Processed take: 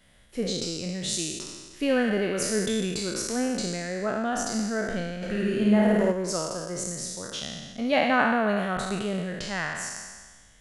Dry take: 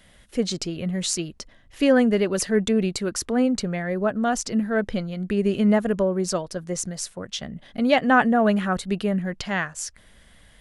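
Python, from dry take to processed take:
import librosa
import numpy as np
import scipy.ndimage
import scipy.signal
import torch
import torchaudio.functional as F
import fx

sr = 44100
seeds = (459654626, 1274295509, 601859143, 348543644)

y = fx.spec_trails(x, sr, decay_s=1.48)
y = fx.room_flutter(y, sr, wall_m=9.1, rt60_s=1.2, at=(5.21, 6.11), fade=0.02)
y = y * 10.0 ** (-7.5 / 20.0)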